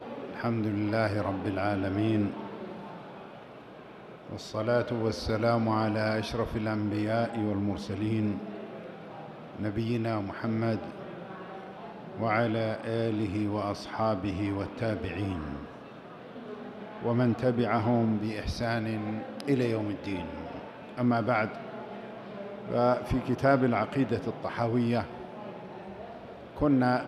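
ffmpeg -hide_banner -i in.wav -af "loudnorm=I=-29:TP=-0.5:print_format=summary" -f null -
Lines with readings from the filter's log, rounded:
Input Integrated:    -29.8 LUFS
Input True Peak:     -10.6 dBTP
Input LRA:             4.3 LU
Input Threshold:     -41.1 LUFS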